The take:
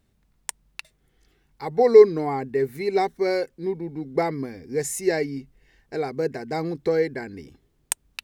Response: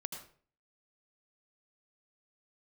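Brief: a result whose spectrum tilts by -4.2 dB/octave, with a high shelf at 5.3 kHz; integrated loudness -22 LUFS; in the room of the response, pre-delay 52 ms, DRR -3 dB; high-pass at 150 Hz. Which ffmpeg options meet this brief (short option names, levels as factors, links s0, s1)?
-filter_complex "[0:a]highpass=150,highshelf=f=5300:g=5.5,asplit=2[s0][s1];[1:a]atrim=start_sample=2205,adelay=52[s2];[s1][s2]afir=irnorm=-1:irlink=0,volume=1.58[s3];[s0][s3]amix=inputs=2:normalize=0,volume=0.708"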